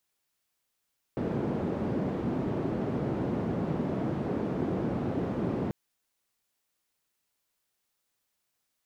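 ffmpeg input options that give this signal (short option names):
-f lavfi -i "anoisesrc=c=white:d=4.54:r=44100:seed=1,highpass=f=130,lowpass=f=300,volume=-5.2dB"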